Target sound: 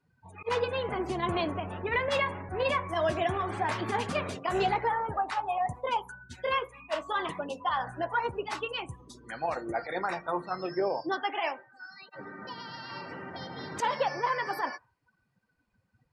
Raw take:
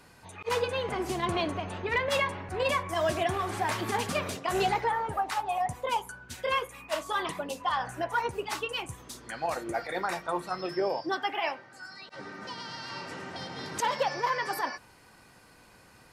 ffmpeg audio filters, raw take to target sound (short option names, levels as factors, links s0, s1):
-af "afftdn=nr=25:nf=-45,highshelf=f=6200:g=-9.5"